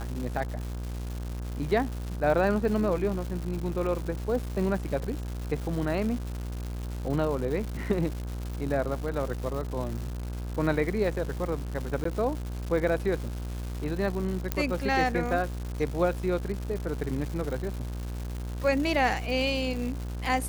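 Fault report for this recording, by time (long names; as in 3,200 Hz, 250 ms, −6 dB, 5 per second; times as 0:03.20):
mains buzz 60 Hz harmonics 28 −34 dBFS
surface crackle 320 per second −34 dBFS
0:12.04–0:12.05: drop-out 14 ms
0:14.52: click −11 dBFS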